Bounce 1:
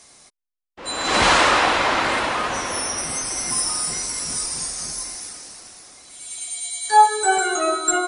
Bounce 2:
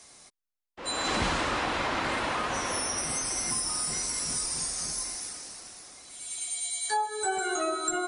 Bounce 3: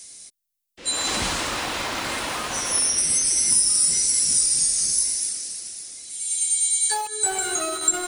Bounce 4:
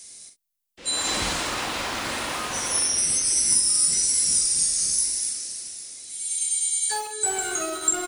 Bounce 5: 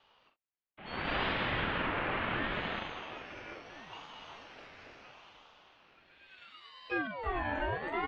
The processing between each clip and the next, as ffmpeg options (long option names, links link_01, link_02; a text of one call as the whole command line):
ffmpeg -i in.wav -filter_complex "[0:a]acrossover=split=290[link_01][link_02];[link_02]acompressor=threshold=-23dB:ratio=10[link_03];[link_01][link_03]amix=inputs=2:normalize=0,volume=-3.5dB" out.wav
ffmpeg -i in.wav -filter_complex "[0:a]acrossover=split=650|1500[link_01][link_02][link_03];[link_02]acrusher=bits=5:mix=0:aa=0.000001[link_04];[link_03]crystalizer=i=3:c=0[link_05];[link_01][link_04][link_05]amix=inputs=3:normalize=0" out.wav
ffmpeg -i in.wav -af "aecho=1:1:44|65:0.447|0.178,volume=-2dB" out.wav
ffmpeg -i in.wav -af "highpass=frequency=260:width_type=q:width=0.5412,highpass=frequency=260:width_type=q:width=1.307,lowpass=frequency=2700:width_type=q:width=0.5176,lowpass=frequency=2700:width_type=q:width=0.7071,lowpass=frequency=2700:width_type=q:width=1.932,afreqshift=-210,aeval=exprs='val(0)*sin(2*PI*730*n/s+730*0.4/0.73*sin(2*PI*0.73*n/s))':channel_layout=same" out.wav